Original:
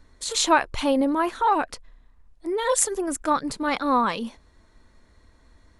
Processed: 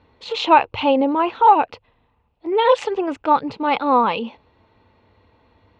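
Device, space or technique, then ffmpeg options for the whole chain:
guitar cabinet: -filter_complex "[0:a]highpass=97,equalizer=frequency=100:width_type=q:width=4:gain=9,equalizer=frequency=470:width_type=q:width=4:gain=7,equalizer=frequency=850:width_type=q:width=4:gain=9,equalizer=frequency=1700:width_type=q:width=4:gain=-7,equalizer=frequency=2700:width_type=q:width=4:gain=9,lowpass=frequency=3700:width=0.5412,lowpass=frequency=3700:width=1.3066,asettb=1/sr,asplit=3[link_01][link_02][link_03];[link_01]atrim=end=2.524[link_04];[link_02]atrim=start=2.52:end=3.16,asetpts=PTS-STARTPTS,afade=type=in:duration=0.004:curve=qsin,afade=type=out:start_time=0.636:duration=0.004:curve=qsin,equalizer=frequency=2200:width=0.39:gain=5[link_05];[link_03]atrim=start=3.156[link_06];[link_04][link_05]acrossfade=duration=0.004:curve1=hsin:curve2=qsin[link_07];[link_07][link_06]acrossfade=duration=0.004:curve1=qsin:curve2=hsin,volume=2dB"

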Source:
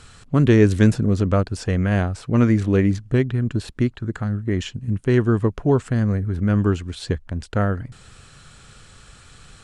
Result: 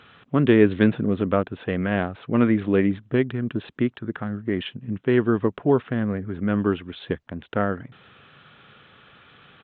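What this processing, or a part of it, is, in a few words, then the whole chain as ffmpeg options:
Bluetooth headset: -af "highpass=190,aresample=8000,aresample=44100" -ar 16000 -c:a sbc -b:a 64k

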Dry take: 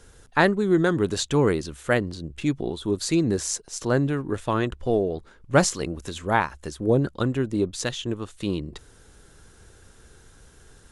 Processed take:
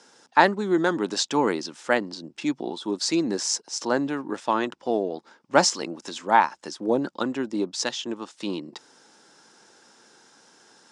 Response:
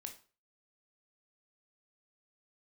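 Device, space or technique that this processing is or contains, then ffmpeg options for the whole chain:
television speaker: -af "highpass=frequency=220:width=0.5412,highpass=frequency=220:width=1.3066,equalizer=frequency=420:width_type=q:width=4:gain=-5,equalizer=frequency=880:width_type=q:width=4:gain=8,equalizer=frequency=5200:width_type=q:width=4:gain=9,lowpass=frequency=8200:width=0.5412,lowpass=frequency=8200:width=1.3066"

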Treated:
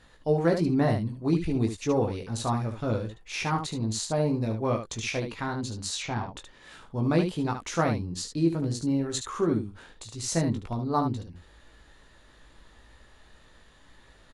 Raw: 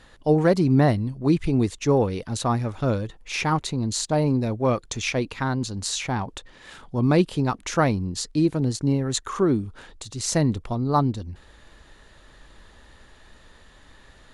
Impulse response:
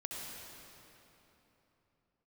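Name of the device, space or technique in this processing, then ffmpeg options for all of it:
slapback doubling: -filter_complex "[0:a]asettb=1/sr,asplit=3[link_01][link_02][link_03];[link_01]atrim=end=5.954[link_04];[link_02]atrim=start=5.95:end=6.36,asetpts=PTS-STARTPTS,afade=type=in:duration=0.004:curve=qsin,afade=type=out:start_time=0.406:duration=0.004:curve=qsin,lowpass=frequency=6400:width=0.5412,lowpass=frequency=6400:width=1.3066[link_05];[link_03]atrim=start=6.356[link_06];[link_04][link_05]acrossfade=duration=0.004:curve1=hsin:curve2=qsin[link_07];[link_07][link_06]acrossfade=duration=0.004:curve1=qsin:curve2=hsin,asplit=3[link_08][link_09][link_10];[link_09]adelay=18,volume=-4.5dB[link_11];[link_10]adelay=73,volume=-7dB[link_12];[link_08][link_11][link_12]amix=inputs=3:normalize=0,volume=-6.5dB"

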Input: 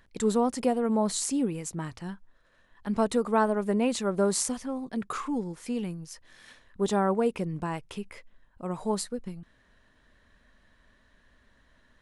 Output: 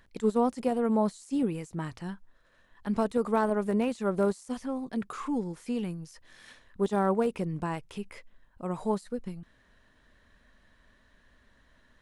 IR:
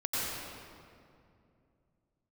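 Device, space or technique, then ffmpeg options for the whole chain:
de-esser from a sidechain: -filter_complex "[0:a]asplit=2[link_01][link_02];[link_02]highpass=6600,apad=whole_len=529772[link_03];[link_01][link_03]sidechaincompress=threshold=-51dB:ratio=6:attack=0.5:release=25"

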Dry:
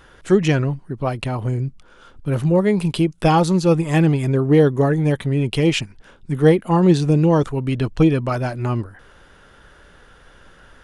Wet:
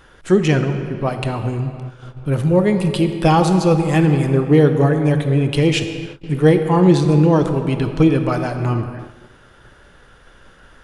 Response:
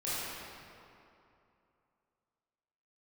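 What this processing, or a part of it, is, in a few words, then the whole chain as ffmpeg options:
keyed gated reverb: -filter_complex "[0:a]asplit=3[link_01][link_02][link_03];[1:a]atrim=start_sample=2205[link_04];[link_02][link_04]afir=irnorm=-1:irlink=0[link_05];[link_03]apad=whole_len=477937[link_06];[link_05][link_06]sidechaingate=range=-33dB:threshold=-45dB:ratio=16:detection=peak,volume=-12dB[link_07];[link_01][link_07]amix=inputs=2:normalize=0"

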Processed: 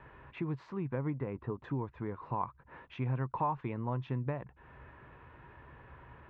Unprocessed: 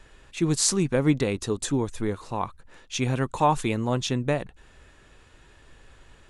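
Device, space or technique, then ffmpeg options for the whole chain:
bass amplifier: -filter_complex "[0:a]acompressor=threshold=-39dB:ratio=3,highpass=69,equalizer=frequency=69:width_type=q:width=4:gain=6,equalizer=frequency=130:width_type=q:width=4:gain=8,equalizer=frequency=990:width_type=q:width=4:gain=9,lowpass=frequency=2200:width=0.5412,lowpass=frequency=2200:width=1.3066,asettb=1/sr,asplit=3[link_01][link_02][link_03];[link_01]atrim=end=1.104[link_04];[link_02]atrim=start=1.1:end=1.64,asetpts=PTS-STARTPTS,afade=type=in:duration=0.004:curve=qsin,afade=type=out:start_time=0.536:duration=0.004:curve=qsin,lowpass=2100[link_05];[link_03]atrim=start=1.636[link_06];[link_04][link_05]acrossfade=duration=0.004:curve1=hsin:curve2=qsin[link_07];[link_07][link_06]acrossfade=duration=0.004:curve1=qsin:curve2=hsin"

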